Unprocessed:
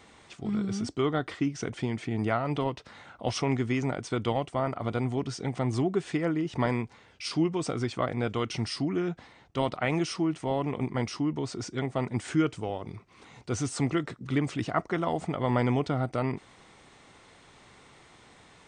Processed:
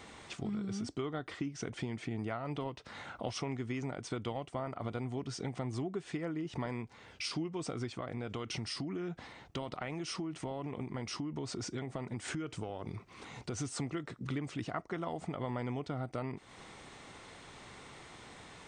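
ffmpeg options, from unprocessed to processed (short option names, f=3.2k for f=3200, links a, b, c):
-filter_complex "[0:a]asettb=1/sr,asplit=3[a][b][c];[a]atrim=end=7.904[d];[b]atrim=start=7.9:end=13.61,asetpts=PTS-STARTPTS,afade=t=in:d=0.004:c=qsin,afade=t=out:st=5.706:d=0.004:c=qsin,acompressor=threshold=-32dB:ratio=3:attack=3.2:release=140:knee=1:detection=peak[e];[c]atrim=start=13.606[f];[d][e]acrossfade=d=0.004:c1=hsin:c2=qsin[g];[g][f]acrossfade=d=0.004:c1=qsin:c2=hsin,acompressor=threshold=-40dB:ratio=4,volume=3dB"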